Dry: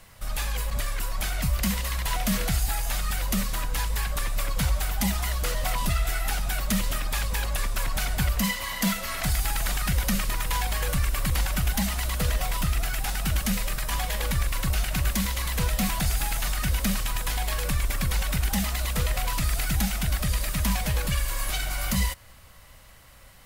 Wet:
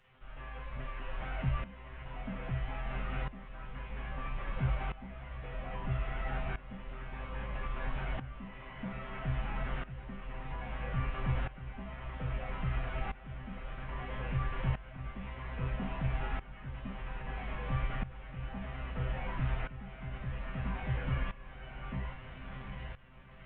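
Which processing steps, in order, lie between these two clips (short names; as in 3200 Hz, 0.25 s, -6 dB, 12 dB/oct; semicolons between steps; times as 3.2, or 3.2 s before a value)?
delta modulation 16 kbps, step -39.5 dBFS; resonator 130 Hz, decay 0.35 s, harmonics all, mix 90%; diffused feedback echo 0.685 s, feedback 73%, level -12 dB; tremolo saw up 0.61 Hz, depth 85%; gain +6.5 dB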